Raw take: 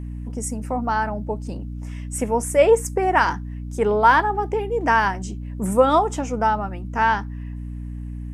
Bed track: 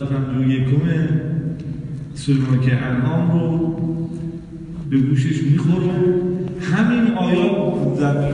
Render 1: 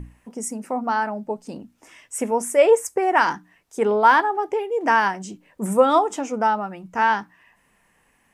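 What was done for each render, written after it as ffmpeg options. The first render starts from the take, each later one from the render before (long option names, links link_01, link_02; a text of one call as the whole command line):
ffmpeg -i in.wav -af "bandreject=frequency=60:width_type=h:width=6,bandreject=frequency=120:width_type=h:width=6,bandreject=frequency=180:width_type=h:width=6,bandreject=frequency=240:width_type=h:width=6,bandreject=frequency=300:width_type=h:width=6" out.wav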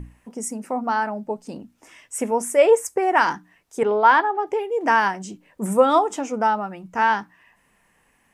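ffmpeg -i in.wav -filter_complex "[0:a]asettb=1/sr,asplit=3[link_01][link_02][link_03];[link_01]atrim=end=3.834[link_04];[link_02]atrim=start=3.83:end=4.47,asetpts=PTS-STARTPTS,afade=type=in:duration=0.004:curve=qsin,afade=type=out:start_time=0.636:duration=0.004:curve=qsin,highpass=250,lowpass=4500[link_05];[link_03]atrim=start=4.466[link_06];[link_04][link_05]acrossfade=duration=0.004:curve1=hsin:curve2=qsin[link_07];[link_07][link_06]acrossfade=duration=0.004:curve1=qsin:curve2=hsin" out.wav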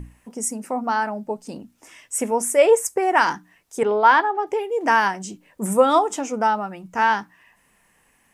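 ffmpeg -i in.wav -af "highshelf=frequency=4400:gain=6" out.wav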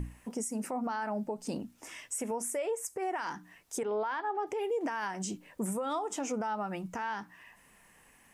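ffmpeg -i in.wav -af "acompressor=threshold=-25dB:ratio=12,alimiter=level_in=2dB:limit=-24dB:level=0:latency=1:release=110,volume=-2dB" out.wav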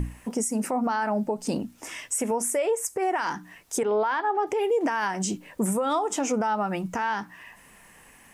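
ffmpeg -i in.wav -af "volume=8.5dB" out.wav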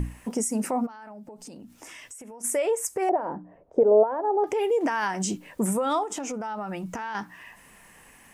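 ffmpeg -i in.wav -filter_complex "[0:a]asplit=3[link_01][link_02][link_03];[link_01]afade=type=out:start_time=0.85:duration=0.02[link_04];[link_02]acompressor=threshold=-40dB:ratio=12:attack=3.2:release=140:knee=1:detection=peak,afade=type=in:start_time=0.85:duration=0.02,afade=type=out:start_time=2.43:duration=0.02[link_05];[link_03]afade=type=in:start_time=2.43:duration=0.02[link_06];[link_04][link_05][link_06]amix=inputs=3:normalize=0,asettb=1/sr,asplit=3[link_07][link_08][link_09];[link_07]atrim=end=3.094[link_10];[link_08]atrim=start=3.09:end=4.44,asetpts=PTS-STARTPTS,afade=type=in:duration=0.004:curve=qsin,afade=type=out:start_time=1.346:duration=0.004:curve=qsin,lowpass=frequency=580:width_type=q:width=4.6[link_11];[link_09]atrim=start=4.436[link_12];[link_10][link_11]acrossfade=duration=0.004:curve1=hsin:curve2=qsin[link_13];[link_13][link_12]acrossfade=duration=0.004:curve1=qsin:curve2=hsin,asettb=1/sr,asplit=3[link_14][link_15][link_16];[link_14]atrim=end=6.034[link_17];[link_15]atrim=start=6.03:end=7.15,asetpts=PTS-STARTPTS,afade=type=in:duration=0.004:curve=qsin,afade=type=out:start_time=1.116:duration=0.004:curve=qsin,acompressor=threshold=-29dB:ratio=6:attack=3.2:release=140:knee=1:detection=peak[link_18];[link_16]atrim=start=7.146[link_19];[link_17][link_18]acrossfade=duration=0.004:curve1=hsin:curve2=qsin[link_20];[link_20][link_19]acrossfade=duration=0.004:curve1=qsin:curve2=hsin" out.wav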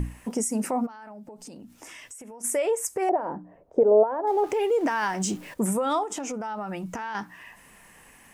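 ffmpeg -i in.wav -filter_complex "[0:a]asettb=1/sr,asplit=3[link_01][link_02][link_03];[link_01]atrim=end=4.274[link_04];[link_02]atrim=start=4.27:end=5.54,asetpts=PTS-STARTPTS,afade=type=in:duration=0.004:curve=qsin,afade=type=out:start_time=1.266:duration=0.004:curve=qsin,aeval=exprs='val(0)+0.5*0.00708*sgn(val(0))':channel_layout=same[link_05];[link_03]atrim=start=5.536[link_06];[link_04][link_05]acrossfade=duration=0.004:curve1=hsin:curve2=qsin[link_07];[link_07][link_06]acrossfade=duration=0.004:curve1=qsin:curve2=hsin" out.wav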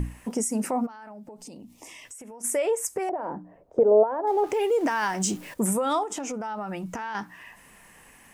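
ffmpeg -i in.wav -filter_complex "[0:a]asettb=1/sr,asplit=3[link_01][link_02][link_03];[link_01]atrim=end=1.434[link_04];[link_02]atrim=start=1.43:end=2.05,asetpts=PTS-STARTPTS,afade=type=in:duration=0.004:curve=qsin,afade=type=out:start_time=0.616:duration=0.004:curve=qsin,asuperstop=centerf=1500:order=4:qfactor=1.9[link_05];[link_03]atrim=start=2.046[link_06];[link_04][link_05]acrossfade=duration=0.004:curve1=hsin:curve2=qsin[link_07];[link_07][link_06]acrossfade=duration=0.004:curve1=qsin:curve2=hsin,asettb=1/sr,asplit=3[link_08][link_09][link_10];[link_08]atrim=end=2.984[link_11];[link_09]atrim=start=2.98:end=3.79,asetpts=PTS-STARTPTS,afade=type=in:duration=0.004:curve=qsin,afade=type=out:start_time=0.806:duration=0.004:curve=qsin,acrossover=split=140|3000[link_12][link_13][link_14];[link_13]acompressor=threshold=-25dB:ratio=6:attack=3.2:release=140:knee=2.83:detection=peak[link_15];[link_12][link_15][link_14]amix=inputs=3:normalize=0[link_16];[link_10]atrim=start=3.786[link_17];[link_11][link_16]acrossfade=duration=0.004:curve1=hsin:curve2=qsin[link_18];[link_18][link_17]acrossfade=duration=0.004:curve1=qsin:curve2=hsin,asettb=1/sr,asplit=3[link_19][link_20][link_21];[link_19]atrim=end=4.534[link_22];[link_20]atrim=start=4.53:end=6.04,asetpts=PTS-STARTPTS,afade=type=in:duration=0.004:curve=qsin,afade=type=out:start_time=1.506:duration=0.004:curve=qsin,highshelf=frequency=5200:gain=4.5[link_23];[link_21]atrim=start=6.036[link_24];[link_22][link_23]acrossfade=duration=0.004:curve1=hsin:curve2=qsin[link_25];[link_25][link_24]acrossfade=duration=0.004:curve1=qsin:curve2=hsin" out.wav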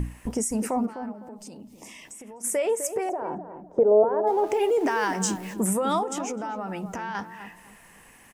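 ffmpeg -i in.wav -filter_complex "[0:a]asplit=2[link_01][link_02];[link_02]adelay=254,lowpass=frequency=910:poles=1,volume=-8dB,asplit=2[link_03][link_04];[link_04]adelay=254,lowpass=frequency=910:poles=1,volume=0.32,asplit=2[link_05][link_06];[link_06]adelay=254,lowpass=frequency=910:poles=1,volume=0.32,asplit=2[link_07][link_08];[link_08]adelay=254,lowpass=frequency=910:poles=1,volume=0.32[link_09];[link_01][link_03][link_05][link_07][link_09]amix=inputs=5:normalize=0" out.wav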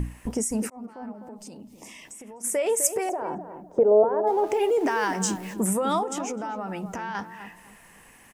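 ffmpeg -i in.wav -filter_complex "[0:a]asettb=1/sr,asplit=3[link_01][link_02][link_03];[link_01]atrim=end=2.664[link_04];[link_02]atrim=start=2.66:end=4.07,asetpts=PTS-STARTPTS,afade=type=in:duration=0.004:curve=qsin,afade=type=out:start_time=1.406:duration=0.004:curve=qsin,highshelf=frequency=2900:gain=9[link_05];[link_03]atrim=start=4.066[link_06];[link_04][link_05]acrossfade=duration=0.004:curve1=hsin:curve2=qsin[link_07];[link_07][link_06]acrossfade=duration=0.004:curve1=qsin:curve2=hsin,asplit=2[link_08][link_09];[link_08]atrim=end=0.7,asetpts=PTS-STARTPTS,afade=type=out:start_time=0.696:duration=0.004:curve=hsin[link_10];[link_09]atrim=start=0.7,asetpts=PTS-STARTPTS,afade=type=in:duration=0.51[link_11];[link_10][link_11]concat=n=2:v=0:a=1" out.wav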